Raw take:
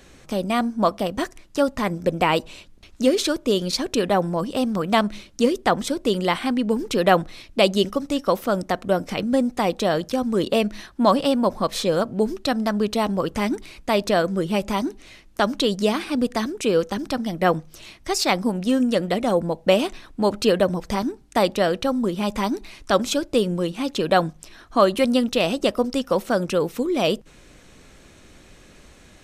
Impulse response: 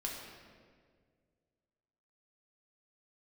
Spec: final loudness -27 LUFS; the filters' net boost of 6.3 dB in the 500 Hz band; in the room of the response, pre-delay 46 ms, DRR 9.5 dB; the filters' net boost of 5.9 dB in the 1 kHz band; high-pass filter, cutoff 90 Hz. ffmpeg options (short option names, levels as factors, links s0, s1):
-filter_complex "[0:a]highpass=90,equalizer=f=500:t=o:g=6,equalizer=f=1000:t=o:g=5.5,asplit=2[s0][s1];[1:a]atrim=start_sample=2205,adelay=46[s2];[s1][s2]afir=irnorm=-1:irlink=0,volume=0.299[s3];[s0][s3]amix=inputs=2:normalize=0,volume=0.335"